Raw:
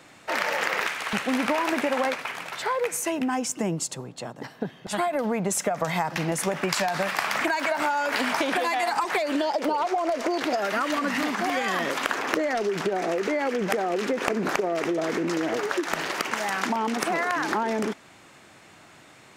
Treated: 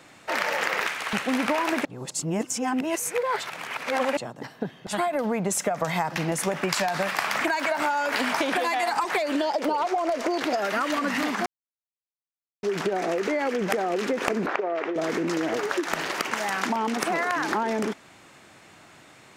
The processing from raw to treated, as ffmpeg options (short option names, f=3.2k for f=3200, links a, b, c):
-filter_complex "[0:a]asettb=1/sr,asplit=3[a][b][c];[a]atrim=end=14.464[d];[b]atrim=start=14.46:end=14.96,asetpts=PTS-STARTPTS,afade=t=in:d=0.004:c=qsin,afade=t=out:st=0.496:d=0.004:c=qsin,highpass=380,lowpass=2.5k[e];[c]atrim=start=14.956[f];[d][e]acrossfade=d=0.004:c1=hsin:c2=qsin[g];[g][f]acrossfade=d=0.004:c1=qsin:c2=hsin,asplit=5[h][i][j][k][l];[h]atrim=end=1.852[m];[i]atrim=start=1.848:end=4.172,asetpts=PTS-STARTPTS,areverse[n];[j]atrim=start=4.168:end=11.46,asetpts=PTS-STARTPTS,afade=t=out:st=7.288:d=0.004:c=hsin[o];[k]atrim=start=11.46:end=12.63,asetpts=PTS-STARTPTS,volume=0[p];[l]atrim=start=12.63,asetpts=PTS-STARTPTS,afade=t=in:d=0.004:c=hsin[q];[m][n]acrossfade=d=0.004:c1=hsin:c2=hsin[r];[o][p][q]concat=n=3:v=0:a=1[s];[r][s]acrossfade=d=0.004:c1=hsin:c2=hsin"